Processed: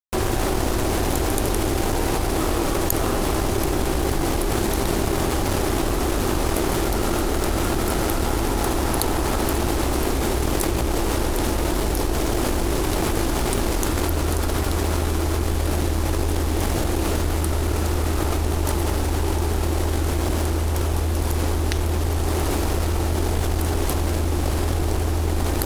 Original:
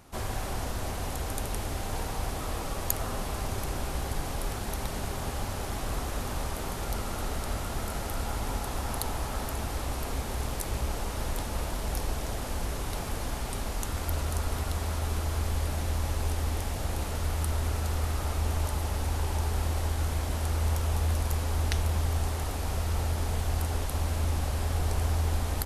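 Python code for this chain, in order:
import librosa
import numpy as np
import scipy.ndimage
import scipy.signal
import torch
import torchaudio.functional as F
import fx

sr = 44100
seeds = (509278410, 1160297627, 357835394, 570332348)

p1 = fx.quant_dither(x, sr, seeds[0], bits=8, dither='triangular')
p2 = x + F.gain(torch.from_numpy(p1), -11.0).numpy()
p3 = fx.peak_eq(p2, sr, hz=340.0, db=13.0, octaves=0.54)
p4 = np.sign(p3) * np.maximum(np.abs(p3) - 10.0 ** (-38.0 / 20.0), 0.0)
p5 = fx.env_flatten(p4, sr, amount_pct=100)
y = F.gain(torch.from_numpy(p5), 1.5).numpy()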